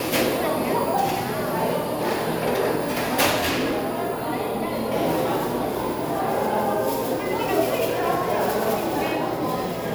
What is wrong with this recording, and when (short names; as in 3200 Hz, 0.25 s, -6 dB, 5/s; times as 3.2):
3.37–3.99 clipped -19.5 dBFS